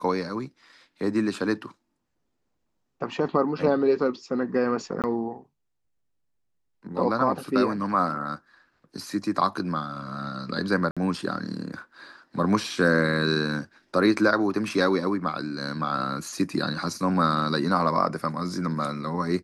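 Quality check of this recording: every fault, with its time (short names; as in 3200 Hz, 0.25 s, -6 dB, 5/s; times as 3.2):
5.02–5.04 gap 18 ms
10.91–10.97 gap 56 ms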